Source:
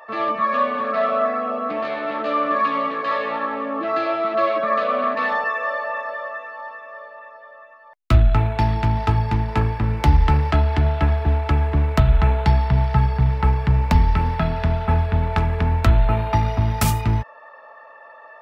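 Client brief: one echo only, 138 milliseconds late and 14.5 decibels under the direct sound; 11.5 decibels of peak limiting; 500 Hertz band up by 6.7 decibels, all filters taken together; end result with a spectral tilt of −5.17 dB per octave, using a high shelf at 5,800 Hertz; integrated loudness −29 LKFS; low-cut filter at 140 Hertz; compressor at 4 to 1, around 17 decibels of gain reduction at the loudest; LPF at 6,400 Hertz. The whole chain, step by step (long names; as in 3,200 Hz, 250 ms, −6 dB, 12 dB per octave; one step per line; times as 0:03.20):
high-pass filter 140 Hz
low-pass filter 6,400 Hz
parametric band 500 Hz +9 dB
high-shelf EQ 5,800 Hz +9 dB
downward compressor 4 to 1, threshold −33 dBFS
brickwall limiter −24.5 dBFS
single-tap delay 138 ms −14.5 dB
level +5.5 dB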